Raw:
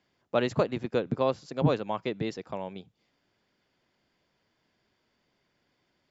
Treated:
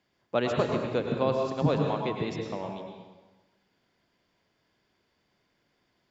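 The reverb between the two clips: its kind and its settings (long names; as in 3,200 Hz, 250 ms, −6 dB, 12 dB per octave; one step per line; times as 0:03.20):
dense smooth reverb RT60 1.2 s, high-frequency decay 0.85×, pre-delay 90 ms, DRR 2 dB
level −1 dB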